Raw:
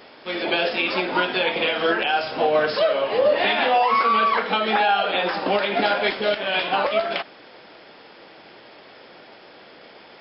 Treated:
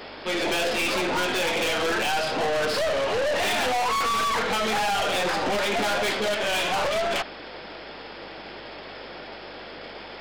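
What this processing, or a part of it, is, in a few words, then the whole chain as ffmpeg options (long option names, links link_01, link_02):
valve amplifier with mains hum: -af "aeval=exprs='(tanh(31.6*val(0)+0.25)-tanh(0.25))/31.6':channel_layout=same,aeval=exprs='val(0)+0.000708*(sin(2*PI*50*n/s)+sin(2*PI*2*50*n/s)/2+sin(2*PI*3*50*n/s)/3+sin(2*PI*4*50*n/s)/4+sin(2*PI*5*50*n/s)/5)':channel_layout=same,volume=7dB"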